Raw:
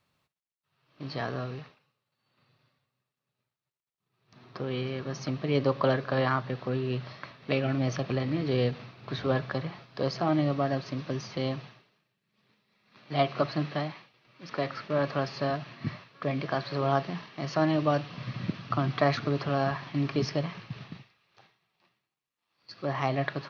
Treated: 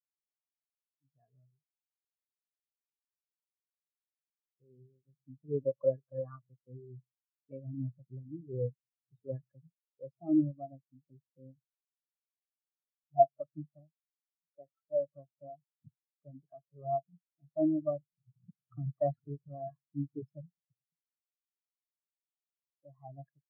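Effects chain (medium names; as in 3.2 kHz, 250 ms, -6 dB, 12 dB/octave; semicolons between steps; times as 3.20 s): spectral contrast expander 4:1; trim -2.5 dB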